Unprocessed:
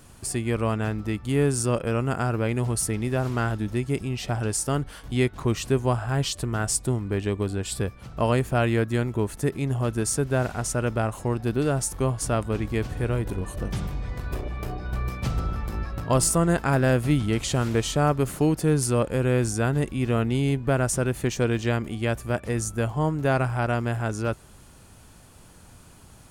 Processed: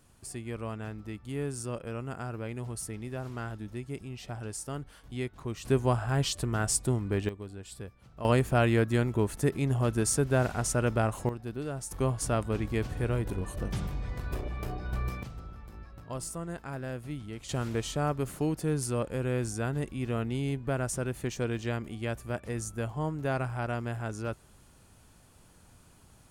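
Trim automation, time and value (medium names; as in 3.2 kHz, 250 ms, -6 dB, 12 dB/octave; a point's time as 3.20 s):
-12 dB
from 5.65 s -3 dB
from 7.29 s -15 dB
from 8.25 s -2 dB
from 11.29 s -12 dB
from 11.91 s -4 dB
from 15.23 s -16.5 dB
from 17.49 s -8 dB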